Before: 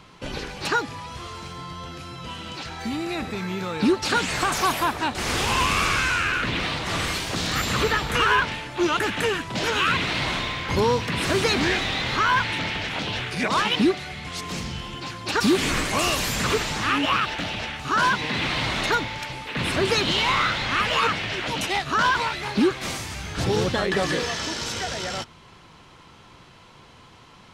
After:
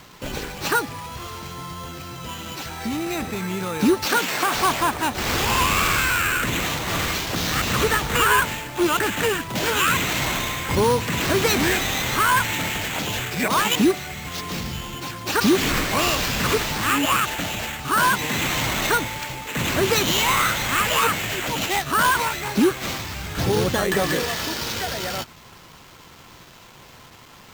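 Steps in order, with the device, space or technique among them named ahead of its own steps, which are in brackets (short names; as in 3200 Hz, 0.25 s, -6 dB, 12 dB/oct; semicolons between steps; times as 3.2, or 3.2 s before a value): early 8-bit sampler (sample-rate reducer 10000 Hz, jitter 0%; bit-crush 8-bit); 4.06–4.55 HPF 230 Hz 12 dB/oct; gain +2 dB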